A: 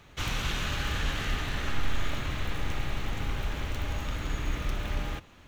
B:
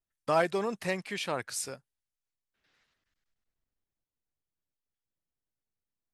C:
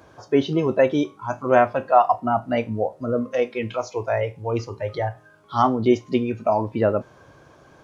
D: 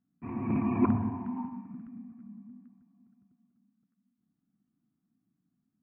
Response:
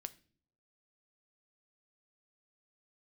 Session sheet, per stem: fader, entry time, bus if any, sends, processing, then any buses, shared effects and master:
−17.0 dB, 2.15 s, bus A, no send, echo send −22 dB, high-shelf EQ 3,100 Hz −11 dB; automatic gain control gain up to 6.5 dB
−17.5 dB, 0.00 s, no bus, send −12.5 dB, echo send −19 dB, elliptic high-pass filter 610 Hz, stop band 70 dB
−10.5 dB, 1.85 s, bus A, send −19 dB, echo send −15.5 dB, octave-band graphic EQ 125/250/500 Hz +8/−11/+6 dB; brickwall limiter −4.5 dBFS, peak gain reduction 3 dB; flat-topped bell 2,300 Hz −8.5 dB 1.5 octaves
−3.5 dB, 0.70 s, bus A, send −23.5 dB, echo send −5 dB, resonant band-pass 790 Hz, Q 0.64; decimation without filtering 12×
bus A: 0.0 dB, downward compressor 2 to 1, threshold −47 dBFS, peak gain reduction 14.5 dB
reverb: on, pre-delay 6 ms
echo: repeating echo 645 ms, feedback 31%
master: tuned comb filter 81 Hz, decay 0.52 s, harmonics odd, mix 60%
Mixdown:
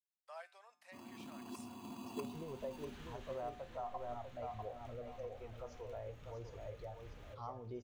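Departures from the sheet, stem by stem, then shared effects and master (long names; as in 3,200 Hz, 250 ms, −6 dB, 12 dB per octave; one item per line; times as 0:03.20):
stem A: missing high-shelf EQ 3,100 Hz −11 dB
reverb return −9.0 dB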